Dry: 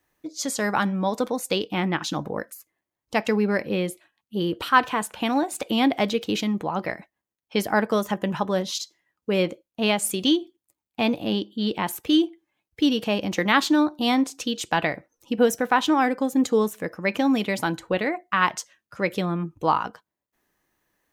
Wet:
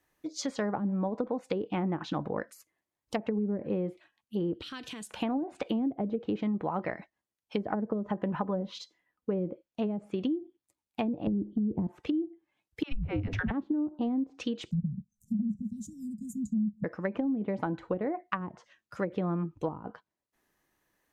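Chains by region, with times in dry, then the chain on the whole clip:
0:04.53–0:05.11: drawn EQ curve 310 Hz 0 dB, 980 Hz −18 dB, 3,700 Hz +3 dB + downward compressor, threshold −35 dBFS
0:08.35–0:09.31: parametric band 6,500 Hz −9 dB 1.9 octaves + comb filter 4 ms, depth 31%
0:11.27–0:11.87: spectral tilt −4.5 dB per octave + downward compressor 4 to 1, threshold −17 dBFS
0:12.83–0:13.51: low-shelf EQ 180 Hz −7.5 dB + frequency shifter −300 Hz + all-pass dispersion lows, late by 88 ms, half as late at 320 Hz
0:14.71–0:16.84: Chebyshev band-stop filter 210–7,100 Hz, order 4 + low shelf with overshoot 250 Hz +6 dB, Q 3
whole clip: treble cut that deepens with the level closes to 310 Hz, closed at −18 dBFS; downward compressor, threshold −24 dBFS; level −2.5 dB

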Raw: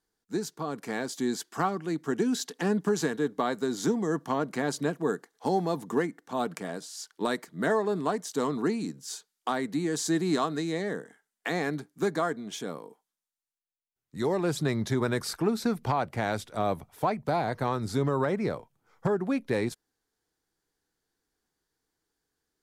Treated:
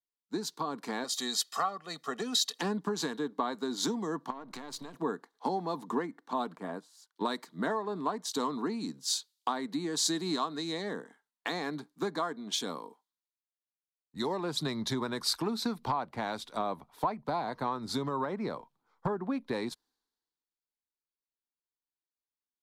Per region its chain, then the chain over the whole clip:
0:01.04–0:02.59: high-pass filter 410 Hz 6 dB per octave + comb filter 1.6 ms, depth 75%
0:04.30–0:04.94: gain on one half-wave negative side −7 dB + downward compressor 16 to 1, threshold −37 dBFS
0:06.56–0:07.16: de-essing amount 85% + parametric band 4,500 Hz −9 dB 1.4 octaves + expander for the loud parts, over −55 dBFS
whole clip: graphic EQ with 15 bands 100 Hz −11 dB, 250 Hz +5 dB, 1,000 Hz +10 dB, 4,000 Hz +10 dB; downward compressor 4 to 1, threshold −31 dBFS; multiband upward and downward expander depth 70%

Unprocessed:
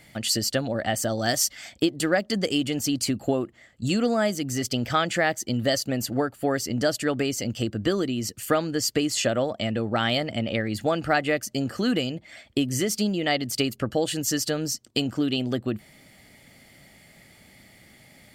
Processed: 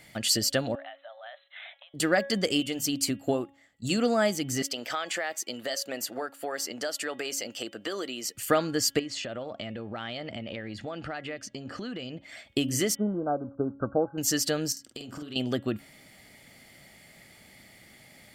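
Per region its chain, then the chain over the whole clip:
0:00.75–0:01.94: downward compressor 12 to 1, threshold −37 dBFS + linear-phase brick-wall band-pass 540–4,100 Hz
0:02.60–0:03.98: high-shelf EQ 9,500 Hz +6 dB + mains-hum notches 50/100/150 Hz + expander for the loud parts, over −38 dBFS
0:04.62–0:08.35: high-pass filter 450 Hz + downward compressor 4 to 1, threshold −27 dBFS
0:08.99–0:12.23: low-pass filter 4,600 Hz + downward compressor 8 to 1, threshold −31 dBFS
0:12.95–0:14.18: mu-law and A-law mismatch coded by mu + linear-phase brick-wall low-pass 1,600 Hz + expander for the loud parts, over −32 dBFS
0:14.72–0:15.36: downward compressor 16 to 1, threshold −34 dBFS + double-tracking delay 47 ms −5.5 dB
whole clip: low-shelf EQ 290 Hz −4.5 dB; hum removal 277.2 Hz, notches 13

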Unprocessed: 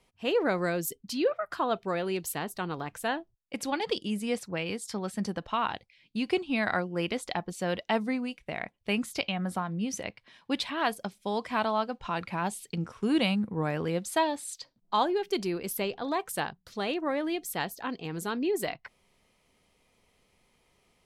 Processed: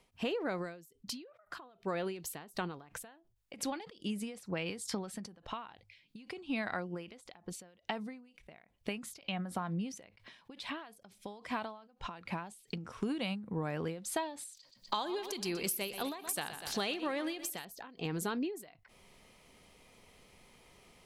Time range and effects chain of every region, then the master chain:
0:14.57–0:17.65: high-shelf EQ 2,400 Hz +11.5 dB + repeating echo 122 ms, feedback 51%, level −15 dB
whole clip: mains-hum notches 50/100 Hz; downward compressor 6 to 1, threshold −41 dBFS; every ending faded ahead of time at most 100 dB per second; level +7.5 dB

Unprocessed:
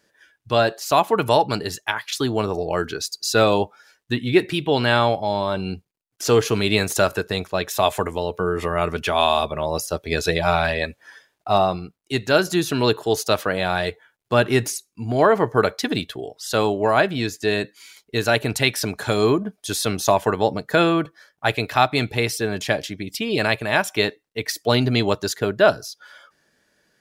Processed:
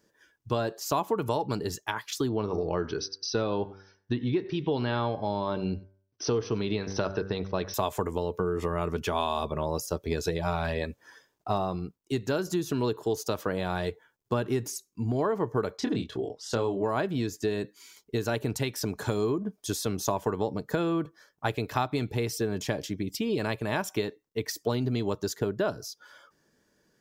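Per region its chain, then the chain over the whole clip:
0:02.29–0:07.74: linear-phase brick-wall low-pass 6,200 Hz + hum removal 96.76 Hz, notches 23 + single-tap delay 95 ms −23.5 dB
0:15.77–0:16.83: low-pass filter 8,500 Hz + high-shelf EQ 6,400 Hz −7 dB + double-tracking delay 26 ms −5 dB
whole clip: flat-topped bell 1,300 Hz −9 dB 2.5 octaves; downward compressor, threshold −25 dBFS; graphic EQ with 15 bands 1,000 Hz +7 dB, 4,000 Hz −8 dB, 10,000 Hz −8 dB

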